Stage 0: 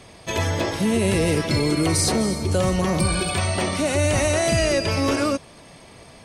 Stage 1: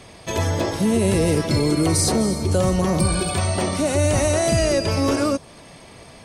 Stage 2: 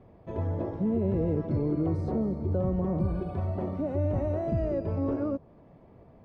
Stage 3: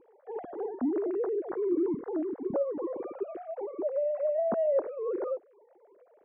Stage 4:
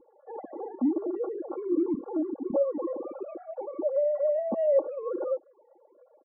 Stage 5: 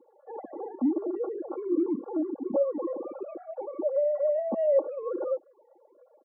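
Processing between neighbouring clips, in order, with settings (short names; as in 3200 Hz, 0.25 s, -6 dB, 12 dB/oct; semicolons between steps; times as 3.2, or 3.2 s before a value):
dynamic EQ 2400 Hz, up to -6 dB, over -39 dBFS, Q 0.85; gain +2 dB
Bessel low-pass 580 Hz, order 2; gain -7.5 dB
sine-wave speech; high shelf 2200 Hz -10.5 dB; gain -2 dB
comb 3.6 ms, depth 64%; loudest bins only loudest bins 32
steep high-pass 180 Hz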